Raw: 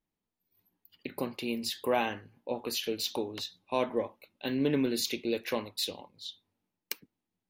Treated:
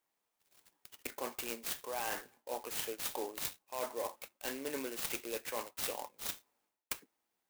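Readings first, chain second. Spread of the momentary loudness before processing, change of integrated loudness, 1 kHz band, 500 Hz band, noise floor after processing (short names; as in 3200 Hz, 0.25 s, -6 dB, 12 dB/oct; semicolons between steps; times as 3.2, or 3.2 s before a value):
14 LU, -6.5 dB, -5.5 dB, -8.5 dB, -85 dBFS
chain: HPF 630 Hz 12 dB/oct; reverse; compressor 10:1, threshold -44 dBFS, peak gain reduction 18.5 dB; reverse; clock jitter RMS 0.073 ms; gain +8.5 dB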